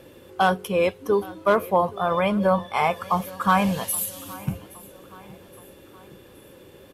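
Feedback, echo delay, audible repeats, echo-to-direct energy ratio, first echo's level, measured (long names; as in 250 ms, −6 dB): 48%, 820 ms, 3, −20.0 dB, −21.0 dB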